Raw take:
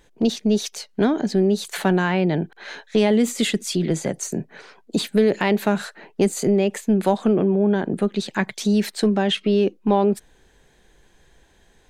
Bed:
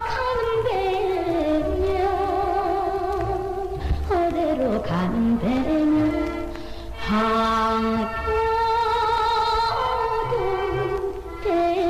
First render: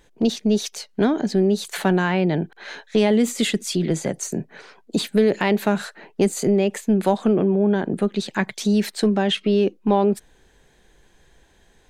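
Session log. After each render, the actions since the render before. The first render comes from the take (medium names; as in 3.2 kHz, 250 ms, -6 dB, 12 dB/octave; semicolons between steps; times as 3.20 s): no audible change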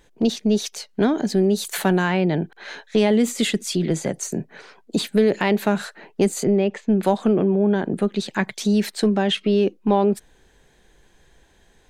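1.08–2.17 s: treble shelf 9.3 kHz +11.5 dB; 6.44–7.03 s: distance through air 160 m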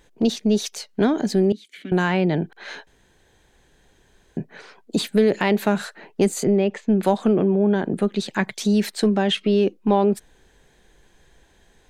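1.52–1.92 s: vowel filter i; 2.87–4.37 s: room tone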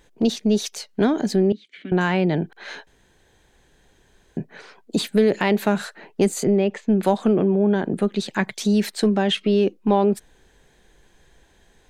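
1.36–2.01 s: low-pass 3.6 kHz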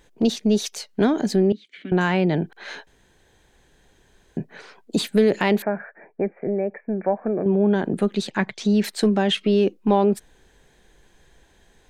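5.62–7.46 s: rippled Chebyshev low-pass 2.4 kHz, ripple 9 dB; 8.30–8.84 s: distance through air 100 m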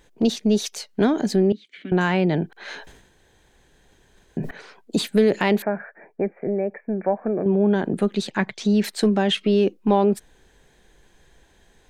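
2.68–4.51 s: decay stretcher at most 65 dB/s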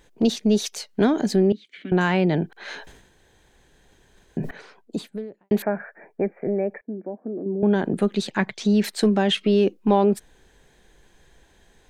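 4.40–5.51 s: studio fade out; 6.81–7.63 s: band-pass filter 290 Hz, Q 2.9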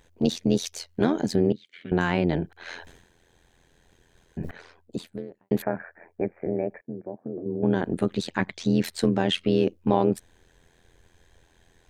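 AM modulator 85 Hz, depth 70%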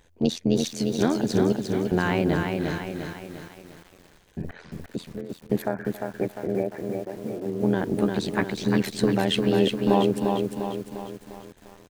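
echo from a far wall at 47 m, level -18 dB; bit-crushed delay 350 ms, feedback 55%, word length 8-bit, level -4 dB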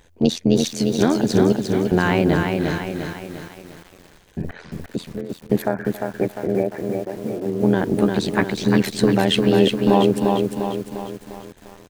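trim +5.5 dB; peak limiter -3 dBFS, peak gain reduction 2 dB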